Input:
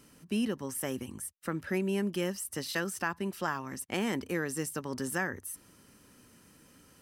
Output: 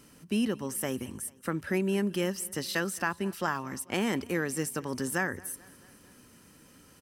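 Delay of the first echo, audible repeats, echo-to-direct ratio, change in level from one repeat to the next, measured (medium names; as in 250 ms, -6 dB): 219 ms, 3, -21.5 dB, -4.5 dB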